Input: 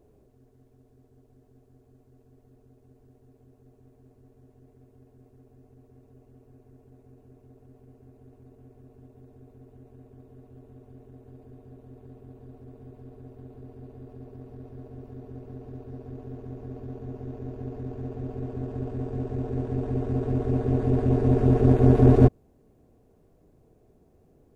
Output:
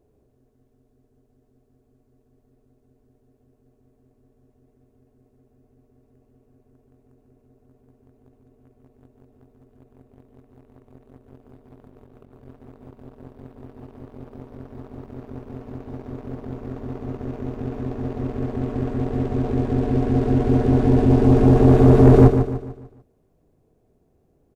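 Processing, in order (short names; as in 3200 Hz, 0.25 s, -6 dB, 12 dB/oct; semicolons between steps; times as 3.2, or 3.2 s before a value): sample leveller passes 2; 11.78–12.41 negative-ratio compressor -49 dBFS, ratio -1; feedback echo 0.148 s, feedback 41%, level -8 dB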